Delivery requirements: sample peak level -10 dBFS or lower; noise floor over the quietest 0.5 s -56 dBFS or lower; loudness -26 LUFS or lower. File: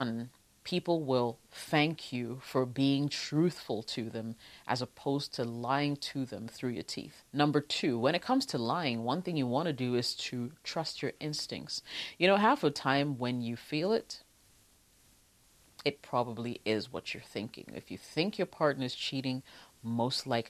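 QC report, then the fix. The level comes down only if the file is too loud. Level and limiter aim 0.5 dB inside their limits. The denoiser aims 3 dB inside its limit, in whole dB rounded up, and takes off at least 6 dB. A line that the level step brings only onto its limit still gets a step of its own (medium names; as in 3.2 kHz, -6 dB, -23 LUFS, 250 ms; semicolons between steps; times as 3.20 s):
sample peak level -11.5 dBFS: pass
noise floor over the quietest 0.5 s -65 dBFS: pass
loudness -33.0 LUFS: pass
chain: none needed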